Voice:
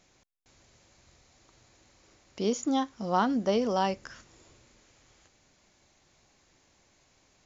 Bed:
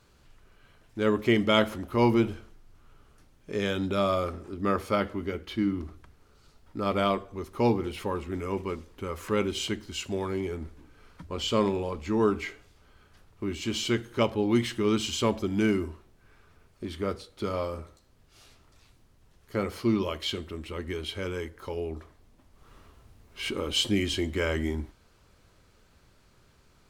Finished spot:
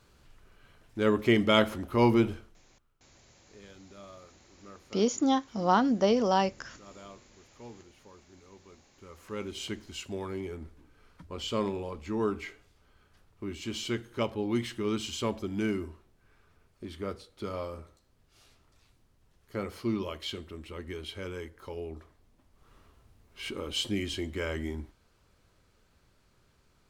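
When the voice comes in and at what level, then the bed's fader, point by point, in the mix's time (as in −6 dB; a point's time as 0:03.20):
2.55 s, +2.0 dB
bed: 0:02.34 −0.5 dB
0:03.05 −23.5 dB
0:08.61 −23.5 dB
0:09.68 −5.5 dB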